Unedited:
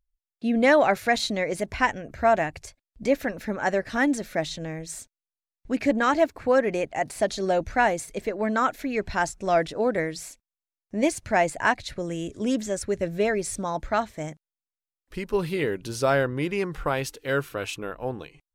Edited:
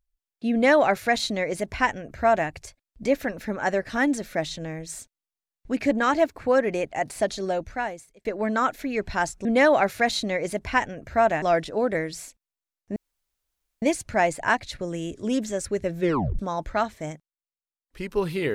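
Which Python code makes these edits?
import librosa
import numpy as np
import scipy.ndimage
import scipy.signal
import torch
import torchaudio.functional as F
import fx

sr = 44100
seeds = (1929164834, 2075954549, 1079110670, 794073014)

y = fx.edit(x, sr, fx.duplicate(start_s=0.52, length_s=1.97, to_s=9.45),
    fx.fade_out_span(start_s=7.22, length_s=1.03),
    fx.insert_room_tone(at_s=10.99, length_s=0.86),
    fx.tape_stop(start_s=13.17, length_s=0.39),
    fx.fade_down_up(start_s=14.27, length_s=0.95, db=-10.5, fade_s=0.2), tone=tone)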